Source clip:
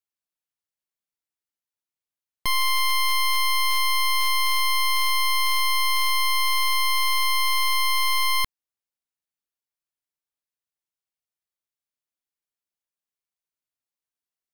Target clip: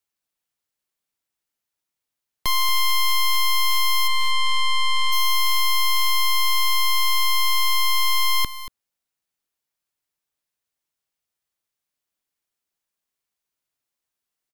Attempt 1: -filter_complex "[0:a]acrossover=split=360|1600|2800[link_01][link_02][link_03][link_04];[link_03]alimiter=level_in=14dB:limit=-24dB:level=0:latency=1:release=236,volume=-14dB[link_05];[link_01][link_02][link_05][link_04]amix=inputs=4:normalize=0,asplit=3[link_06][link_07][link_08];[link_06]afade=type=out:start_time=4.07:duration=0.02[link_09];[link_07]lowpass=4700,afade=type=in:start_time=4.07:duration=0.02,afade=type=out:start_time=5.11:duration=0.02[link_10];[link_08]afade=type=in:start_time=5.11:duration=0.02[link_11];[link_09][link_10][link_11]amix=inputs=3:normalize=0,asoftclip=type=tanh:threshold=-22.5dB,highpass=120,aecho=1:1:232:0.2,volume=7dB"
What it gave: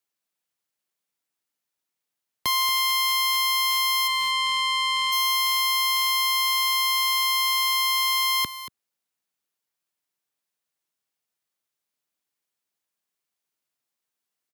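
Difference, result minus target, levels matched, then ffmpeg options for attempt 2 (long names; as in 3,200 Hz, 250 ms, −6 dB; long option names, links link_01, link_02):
125 Hz band −15.0 dB
-filter_complex "[0:a]acrossover=split=360|1600|2800[link_01][link_02][link_03][link_04];[link_03]alimiter=level_in=14dB:limit=-24dB:level=0:latency=1:release=236,volume=-14dB[link_05];[link_01][link_02][link_05][link_04]amix=inputs=4:normalize=0,asplit=3[link_06][link_07][link_08];[link_06]afade=type=out:start_time=4.07:duration=0.02[link_09];[link_07]lowpass=4700,afade=type=in:start_time=4.07:duration=0.02,afade=type=out:start_time=5.11:duration=0.02[link_10];[link_08]afade=type=in:start_time=5.11:duration=0.02[link_11];[link_09][link_10][link_11]amix=inputs=3:normalize=0,asoftclip=type=tanh:threshold=-22.5dB,aecho=1:1:232:0.2,volume=7dB"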